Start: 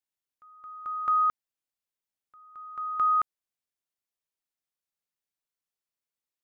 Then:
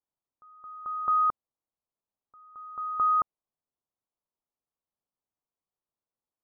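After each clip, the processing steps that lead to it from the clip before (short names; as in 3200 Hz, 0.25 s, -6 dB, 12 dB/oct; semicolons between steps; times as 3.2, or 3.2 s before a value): steep low-pass 1200 Hz; gain +4 dB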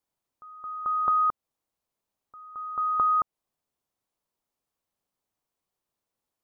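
compressor 3:1, threshold -31 dBFS, peak gain reduction 7 dB; gain +7.5 dB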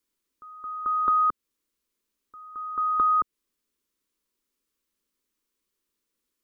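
fixed phaser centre 300 Hz, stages 4; gain +6 dB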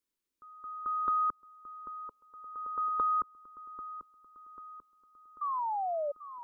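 painted sound fall, 5.41–6.12, 560–1200 Hz -25 dBFS; dark delay 0.791 s, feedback 54%, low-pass 1100 Hz, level -9.5 dB; spectral gain 1.94–3.12, 410–1000 Hz +8 dB; gain -7.5 dB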